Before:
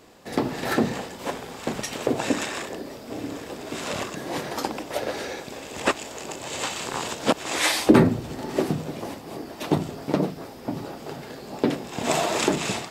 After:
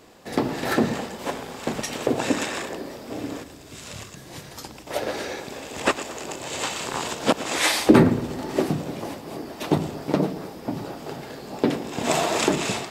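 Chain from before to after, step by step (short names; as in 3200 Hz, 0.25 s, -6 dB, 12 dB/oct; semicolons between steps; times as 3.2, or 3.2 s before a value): 3.43–4.87 EQ curve 110 Hz 0 dB, 250 Hz -13 dB, 760 Hz -15 dB, 6800 Hz -4 dB; on a send: tape echo 0.112 s, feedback 64%, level -13 dB, low-pass 2400 Hz; on the sum: gain +1 dB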